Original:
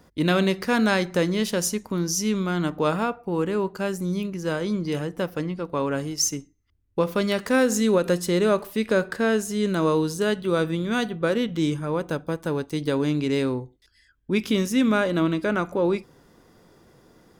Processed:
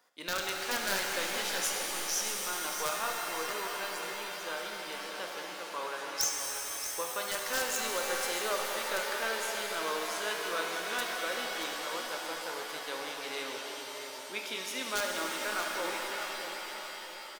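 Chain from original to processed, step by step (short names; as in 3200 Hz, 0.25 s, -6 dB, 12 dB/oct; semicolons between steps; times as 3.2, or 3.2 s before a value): HPF 830 Hz 12 dB/oct; speakerphone echo 0.18 s, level -12 dB; wrapped overs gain 14.5 dB; on a send: feedback echo 0.629 s, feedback 44%, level -10 dB; on the sum: shimmer reverb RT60 3.7 s, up +7 st, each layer -2 dB, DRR 1.5 dB; gain -7.5 dB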